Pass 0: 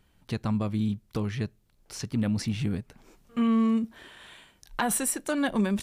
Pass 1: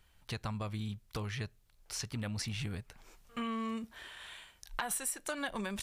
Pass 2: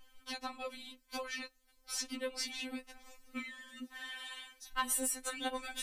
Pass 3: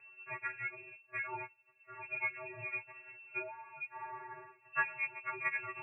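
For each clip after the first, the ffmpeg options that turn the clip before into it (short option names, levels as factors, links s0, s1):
-af "equalizer=f=240:t=o:w=2.2:g=-13,acompressor=threshold=0.0178:ratio=4,volume=1.12"
-filter_complex "[0:a]asplit=2[s0][s1];[s1]asoftclip=type=tanh:threshold=0.02,volume=0.266[s2];[s0][s2]amix=inputs=2:normalize=0,afftfilt=real='re*3.46*eq(mod(b,12),0)':imag='im*3.46*eq(mod(b,12),0)':win_size=2048:overlap=0.75,volume=1.41"
-af "lowpass=f=2300:t=q:w=0.5098,lowpass=f=2300:t=q:w=0.6013,lowpass=f=2300:t=q:w=0.9,lowpass=f=2300:t=q:w=2.563,afreqshift=-2700,volume=1.33"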